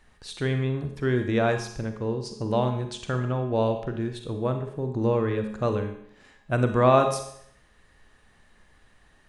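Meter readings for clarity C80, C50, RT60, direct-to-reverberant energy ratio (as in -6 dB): 9.5 dB, 6.5 dB, 0.70 s, 5.0 dB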